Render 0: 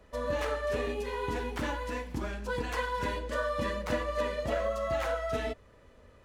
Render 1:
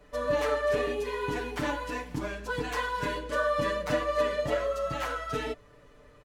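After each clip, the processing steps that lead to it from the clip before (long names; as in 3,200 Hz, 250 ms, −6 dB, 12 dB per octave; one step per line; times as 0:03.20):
comb filter 6.8 ms, depth 89%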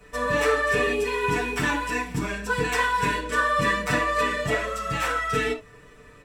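convolution reverb, pre-delay 3 ms, DRR 0.5 dB
level +7.5 dB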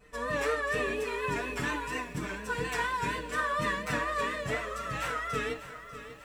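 pitch vibrato 4.2 Hz 74 cents
feedback echo at a low word length 595 ms, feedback 55%, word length 8 bits, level −12.5 dB
level −8 dB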